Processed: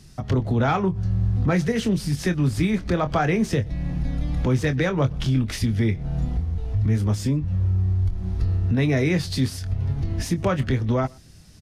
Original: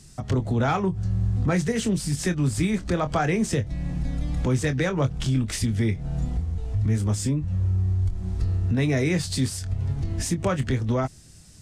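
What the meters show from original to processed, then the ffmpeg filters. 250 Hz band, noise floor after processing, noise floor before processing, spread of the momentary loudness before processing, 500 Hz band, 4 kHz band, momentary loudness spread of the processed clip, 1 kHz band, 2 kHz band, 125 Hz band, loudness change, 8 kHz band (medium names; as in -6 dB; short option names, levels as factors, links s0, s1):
+2.0 dB, -46 dBFS, -47 dBFS, 5 LU, +2.0 dB, +0.5 dB, 5 LU, +2.0 dB, +2.0 dB, +2.0 dB, +2.0 dB, -5.0 dB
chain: -filter_complex "[0:a]equalizer=f=7900:t=o:w=0.55:g=-12,asplit=2[s0][s1];[s1]adelay=122.4,volume=0.0398,highshelf=f=4000:g=-2.76[s2];[s0][s2]amix=inputs=2:normalize=0,volume=1.26"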